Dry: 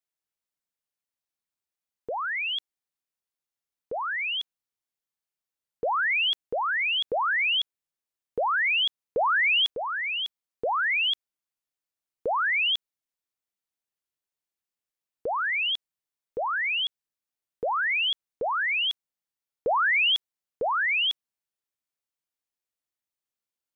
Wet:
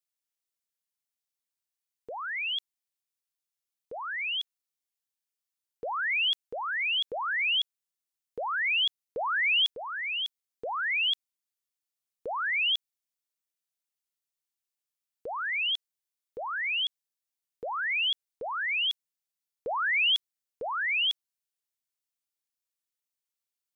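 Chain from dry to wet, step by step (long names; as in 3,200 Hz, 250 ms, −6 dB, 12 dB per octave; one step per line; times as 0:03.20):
high-shelf EQ 2,200 Hz +10.5 dB
level −8.5 dB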